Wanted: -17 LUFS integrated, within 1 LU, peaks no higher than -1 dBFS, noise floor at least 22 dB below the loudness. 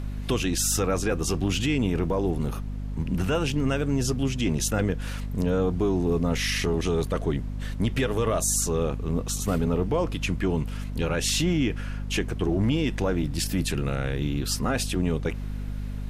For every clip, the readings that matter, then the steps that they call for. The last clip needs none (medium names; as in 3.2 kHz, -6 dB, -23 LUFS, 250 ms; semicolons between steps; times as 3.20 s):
hum 50 Hz; highest harmonic 250 Hz; hum level -29 dBFS; noise floor -33 dBFS; noise floor target -49 dBFS; loudness -26.5 LUFS; peak level -13.5 dBFS; loudness target -17.0 LUFS
-> de-hum 50 Hz, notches 5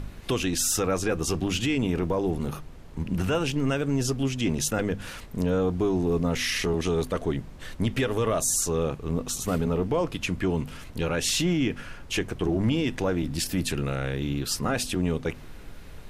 hum not found; noise floor -43 dBFS; noise floor target -49 dBFS
-> noise print and reduce 6 dB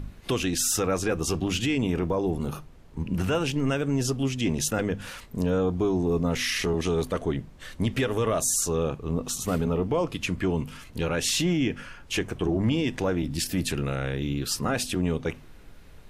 noise floor -48 dBFS; noise floor target -49 dBFS
-> noise print and reduce 6 dB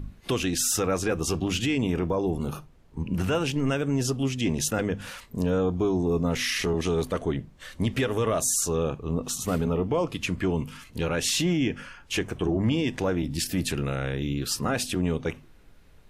noise floor -53 dBFS; loudness -27.0 LUFS; peak level -14.5 dBFS; loudness target -17.0 LUFS
-> trim +10 dB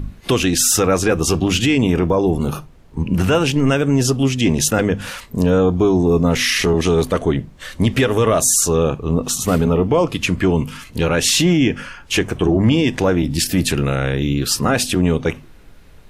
loudness -17.0 LUFS; peak level -4.5 dBFS; noise floor -43 dBFS